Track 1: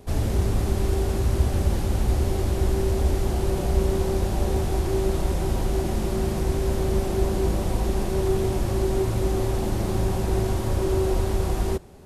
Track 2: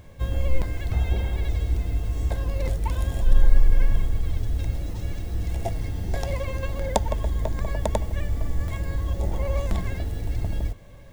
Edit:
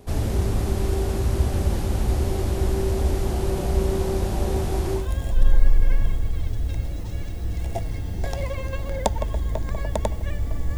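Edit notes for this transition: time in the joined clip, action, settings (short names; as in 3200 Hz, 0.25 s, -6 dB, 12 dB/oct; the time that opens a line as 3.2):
track 1
5.01 switch to track 2 from 2.91 s, crossfade 0.18 s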